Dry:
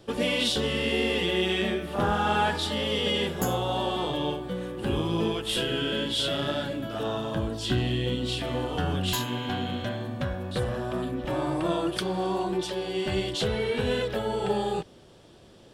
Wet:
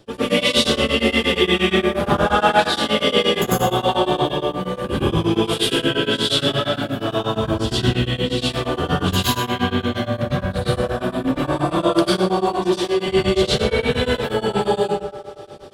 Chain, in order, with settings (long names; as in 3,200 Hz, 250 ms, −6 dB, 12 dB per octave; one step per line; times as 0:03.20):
delay with a band-pass on its return 78 ms, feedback 83%, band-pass 850 Hz, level −13.5 dB
dense smooth reverb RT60 0.72 s, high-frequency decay 0.85×, pre-delay 85 ms, DRR −9 dB
tremolo along a rectified sine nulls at 8.5 Hz
level +2.5 dB